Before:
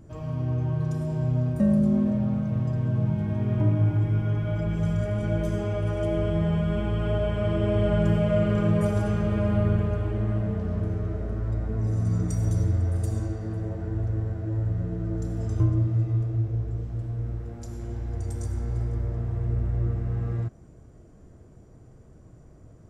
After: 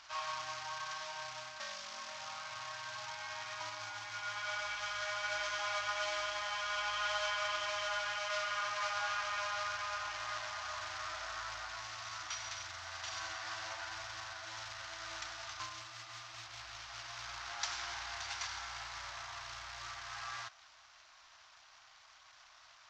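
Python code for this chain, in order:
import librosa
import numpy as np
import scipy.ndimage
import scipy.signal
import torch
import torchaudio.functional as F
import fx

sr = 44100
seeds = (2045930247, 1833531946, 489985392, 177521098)

y = fx.cvsd(x, sr, bps=32000)
y = fx.rider(y, sr, range_db=10, speed_s=0.5)
y = scipy.signal.sosfilt(scipy.signal.cheby2(4, 40, 480.0, 'highpass', fs=sr, output='sos'), y)
y = y * librosa.db_to_amplitude(6.0)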